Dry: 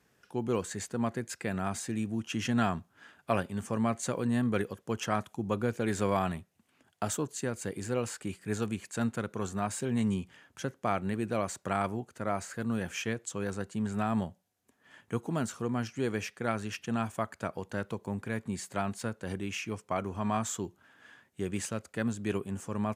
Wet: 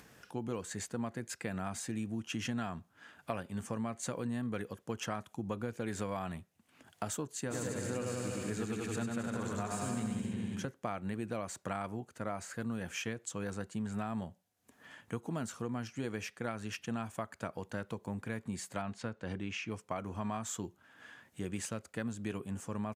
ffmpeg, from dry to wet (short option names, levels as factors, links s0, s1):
-filter_complex "[0:a]asplit=3[s0][s1][s2];[s0]afade=t=out:st=7.5:d=0.02[s3];[s1]aecho=1:1:100|190|271|343.9|409.5|468.6|521.7:0.794|0.631|0.501|0.398|0.316|0.251|0.2,afade=t=in:st=7.5:d=0.02,afade=t=out:st=10.65:d=0.02[s4];[s2]afade=t=in:st=10.65:d=0.02[s5];[s3][s4][s5]amix=inputs=3:normalize=0,asettb=1/sr,asplit=3[s6][s7][s8];[s6]atrim=end=18.824[s9];[s7]atrim=start=18.82:end=19.71,asetpts=PTS-STARTPTS,afade=t=in:d=0.004:c=qsin,afade=t=out:st=0.886:d=0.004:c=qsin,lowpass=5000[s10];[s8]atrim=start=19.706[s11];[s9][s10]acrossfade=d=0.004:c1=hsin:c2=qsin[s12];[s12][s11]acrossfade=d=0.004:c1=qsin:c2=hsin,acompressor=mode=upward:threshold=0.00562:ratio=2.5,bandreject=f=390:w=12,acompressor=threshold=0.0282:ratio=6,volume=0.794"